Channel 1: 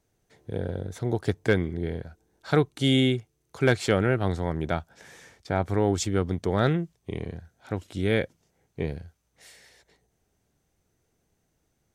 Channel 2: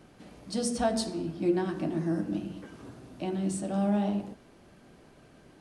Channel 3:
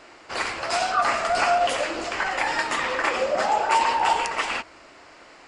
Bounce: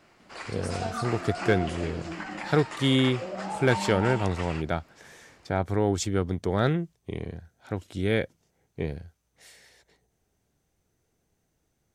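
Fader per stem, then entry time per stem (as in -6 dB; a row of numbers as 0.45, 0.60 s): -1.0, -9.5, -13.0 dB; 0.00, 0.00, 0.00 s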